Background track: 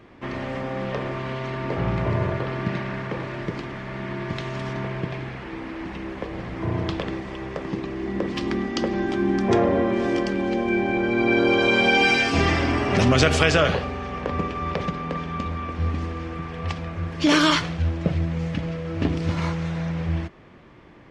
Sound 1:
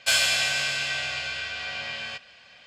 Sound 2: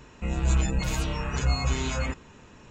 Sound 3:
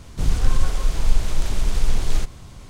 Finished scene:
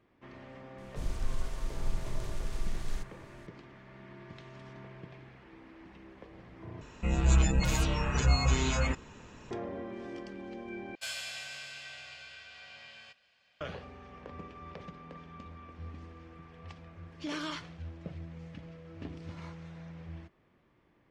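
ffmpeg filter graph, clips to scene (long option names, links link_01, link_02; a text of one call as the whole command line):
ffmpeg -i bed.wav -i cue0.wav -i cue1.wav -i cue2.wav -filter_complex "[0:a]volume=-19.5dB,asplit=3[link_01][link_02][link_03];[link_01]atrim=end=6.814[link_04];[2:a]atrim=end=2.7,asetpts=PTS-STARTPTS,volume=-0.5dB[link_05];[link_02]atrim=start=9.506:end=10.954[link_06];[1:a]atrim=end=2.66,asetpts=PTS-STARTPTS,volume=-17.5dB[link_07];[link_03]atrim=start=13.606[link_08];[3:a]atrim=end=2.69,asetpts=PTS-STARTPTS,volume=-15.5dB,afade=type=in:duration=0.004:curve=hsin,afade=type=out:start_time=2.686:duration=0.004:curve=hsin,adelay=780[link_09];[link_04][link_05]acrossfade=duration=0.004:curve1=hsin:curve2=hsin[link_10];[link_10][link_06]acrossfade=duration=0.004:curve1=hsin:curve2=hsin[link_11];[link_11][link_07]acrossfade=duration=0.004:curve1=hsin:curve2=hsin[link_12];[link_12][link_08]acrossfade=duration=0.004:curve1=hsin:curve2=hsin[link_13];[link_13][link_09]amix=inputs=2:normalize=0" out.wav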